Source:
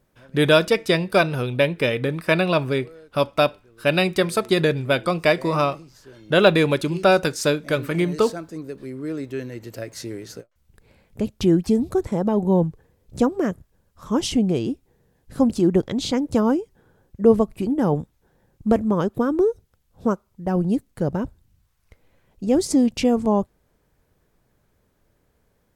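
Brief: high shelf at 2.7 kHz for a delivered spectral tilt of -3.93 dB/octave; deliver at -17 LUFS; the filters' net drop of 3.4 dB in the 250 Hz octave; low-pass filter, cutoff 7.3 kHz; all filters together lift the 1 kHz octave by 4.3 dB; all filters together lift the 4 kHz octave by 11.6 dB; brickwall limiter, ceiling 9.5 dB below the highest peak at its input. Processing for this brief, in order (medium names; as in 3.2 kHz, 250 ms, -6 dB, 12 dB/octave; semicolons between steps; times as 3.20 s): low-pass 7.3 kHz; peaking EQ 250 Hz -5 dB; peaking EQ 1 kHz +4.5 dB; treble shelf 2.7 kHz +7 dB; peaking EQ 4 kHz +8.5 dB; trim +4.5 dB; peak limiter -1.5 dBFS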